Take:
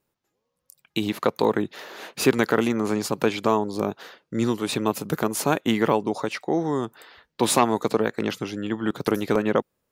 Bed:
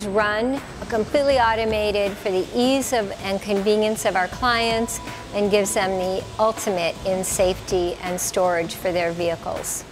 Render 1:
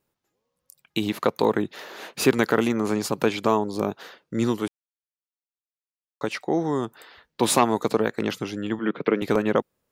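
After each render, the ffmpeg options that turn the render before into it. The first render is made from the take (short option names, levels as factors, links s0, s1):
-filter_complex "[0:a]asettb=1/sr,asplit=3[s0][s1][s2];[s0]atrim=end=8.794[s3];[s1]atrim=start=8.79:end=9.22,asetpts=PTS-STARTPTS,afade=t=in:d=0.004:c=qsin,afade=t=out:st=0.426:d=0.004:c=qsin,highpass=f=160:w=0.5412,highpass=f=160:w=1.3066,equalizer=f=470:t=q:w=4:g=4,equalizer=f=810:t=q:w=4:g=-6,equalizer=f=2200:t=q:w=4:g=8,lowpass=f=3000:w=0.5412,lowpass=f=3000:w=1.3066[s4];[s2]atrim=start=9.216[s5];[s3][s4]acrossfade=d=0.004:c1=hsin:c2=qsin[s6];[s6][s5]acrossfade=d=0.004:c1=qsin:c2=hsin,asplit=3[s7][s8][s9];[s7]atrim=end=4.68,asetpts=PTS-STARTPTS,afade=t=out:st=4.676:d=0.004:c=hsin[s10];[s8]atrim=start=4.68:end=6.21,asetpts=PTS-STARTPTS,volume=0[s11];[s9]atrim=start=6.21,asetpts=PTS-STARTPTS,afade=t=in:d=0.004:c=hsin[s12];[s10][s11][s12]concat=n=3:v=0:a=1"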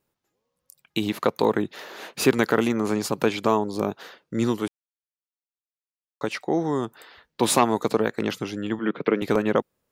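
-af anull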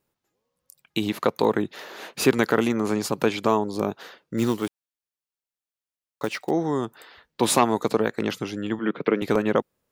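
-filter_complex "[0:a]asplit=3[s0][s1][s2];[s0]afade=t=out:st=4.37:d=0.02[s3];[s1]acrusher=bits=5:mode=log:mix=0:aa=0.000001,afade=t=in:st=4.37:d=0.02,afade=t=out:st=6.49:d=0.02[s4];[s2]afade=t=in:st=6.49:d=0.02[s5];[s3][s4][s5]amix=inputs=3:normalize=0"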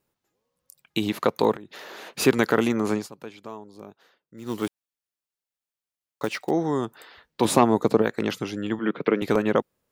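-filter_complex "[0:a]asettb=1/sr,asplit=3[s0][s1][s2];[s0]atrim=end=1.554[s3];[s1]atrim=start=1.55:end=2.07,asetpts=PTS-STARTPTS,afade=t=in:d=0.004:c=qsin,afade=t=out:st=0.516:d=0.004:c=qsin,acompressor=threshold=0.0158:ratio=20:attack=3.2:release=140:knee=1:detection=peak[s4];[s2]atrim=start=2.066[s5];[s3][s4]acrossfade=d=0.004:c1=hsin:c2=qsin[s6];[s6][s5]acrossfade=d=0.004:c1=qsin:c2=hsin,asettb=1/sr,asplit=3[s7][s8][s9];[s7]atrim=end=7.454[s10];[s8]atrim=start=7.45:end=8.02,asetpts=PTS-STARTPTS,afade=t=in:d=0.004:c=qsin,afade=t=out:st=0.566:d=0.004:c=qsin,tiltshelf=f=910:g=4.5[s11];[s9]atrim=start=8.016[s12];[s10][s11]acrossfade=d=0.004:c1=hsin:c2=qsin[s13];[s13][s12]acrossfade=d=0.004:c1=qsin:c2=hsin,asplit=3[s14][s15][s16];[s14]atrim=end=3.08,asetpts=PTS-STARTPTS,afade=t=out:st=2.94:d=0.14:silence=0.133352[s17];[s15]atrim=start=3.08:end=4.45,asetpts=PTS-STARTPTS,volume=0.133[s18];[s16]atrim=start=4.45,asetpts=PTS-STARTPTS,afade=t=in:d=0.14:silence=0.133352[s19];[s17][s18][s19]concat=n=3:v=0:a=1"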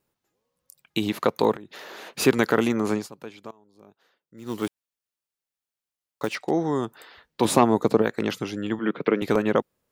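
-filter_complex "[0:a]asettb=1/sr,asplit=3[s0][s1][s2];[s0]atrim=end=6.354[s3];[s1]atrim=start=6.35:end=6.76,asetpts=PTS-STARTPTS,afade=t=in:d=0.004:c=qsin,afade=t=out:st=0.406:d=0.004:c=qsin,lowpass=8900[s4];[s2]atrim=start=6.756[s5];[s3][s4]acrossfade=d=0.004:c1=hsin:c2=qsin[s6];[s6][s5]acrossfade=d=0.004:c1=qsin:c2=hsin,asplit=2[s7][s8];[s7]atrim=end=3.51,asetpts=PTS-STARTPTS,afade=t=out:st=3.506:d=0.004:c=hsin:silence=0.0841395[s9];[s8]atrim=start=3.51,asetpts=PTS-STARTPTS,afade=t=in:d=1.15:silence=0.0841395[s10];[s9][s10]concat=n=2:v=0:a=1"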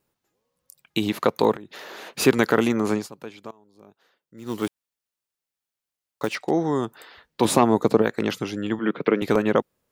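-af "volume=1.19,alimiter=limit=0.708:level=0:latency=1"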